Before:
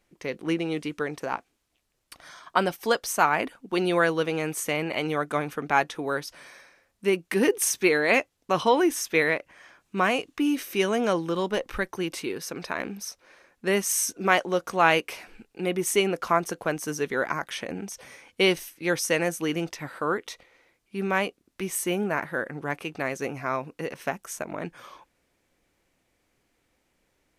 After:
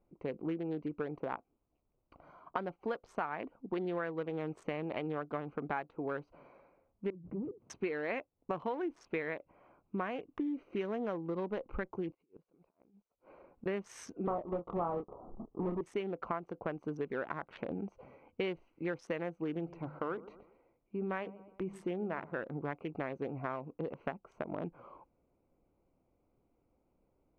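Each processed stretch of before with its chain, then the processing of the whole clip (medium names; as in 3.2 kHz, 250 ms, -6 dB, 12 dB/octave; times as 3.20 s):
7.10–7.70 s: hard clipper -23.5 dBFS + band-pass filter 140 Hz, Q 1.7 + swell ahead of each attack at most 60 dB/s
12.09–13.66 s: compressor with a negative ratio -39 dBFS, ratio -0.5 + inverted gate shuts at -35 dBFS, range -26 dB
14.27–15.81 s: square wave that keeps the level + steep low-pass 1.3 kHz 96 dB/octave + doubling 29 ms -5 dB
19.54–22.40 s: hum notches 50/100/150/200/250 Hz + feedback delay 124 ms, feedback 38%, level -20.5 dB
whole clip: local Wiener filter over 25 samples; low-pass 2.1 kHz 12 dB/octave; compression 6:1, threshold -33 dBFS; trim -1 dB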